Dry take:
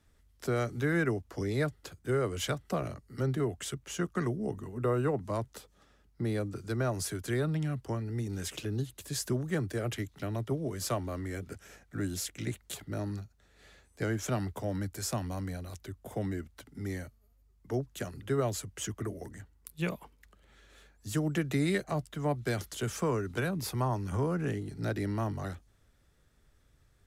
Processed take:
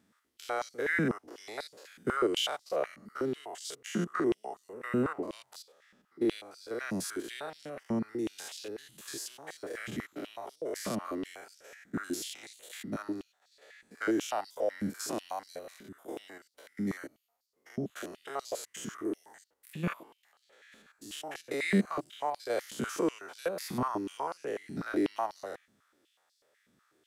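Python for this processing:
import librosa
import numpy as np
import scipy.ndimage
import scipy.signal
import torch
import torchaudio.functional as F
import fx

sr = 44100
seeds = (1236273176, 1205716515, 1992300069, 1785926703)

y = fx.spec_steps(x, sr, hold_ms=100)
y = fx.filter_held_highpass(y, sr, hz=8.1, low_hz=210.0, high_hz=4600.0)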